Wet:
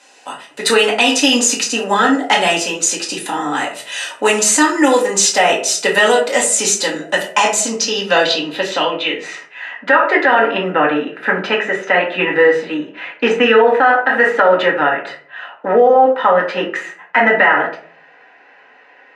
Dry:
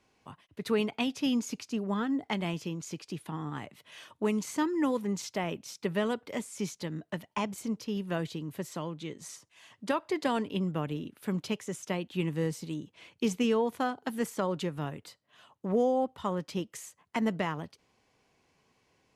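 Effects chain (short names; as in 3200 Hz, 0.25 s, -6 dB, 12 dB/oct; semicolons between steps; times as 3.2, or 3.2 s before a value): HPF 670 Hz 12 dB/oct; notch comb 1100 Hz; low-pass sweep 8500 Hz -> 1800 Hz, 7.37–9.63; reverb RT60 0.50 s, pre-delay 4 ms, DRR -2.5 dB; maximiser +23 dB; gain -1 dB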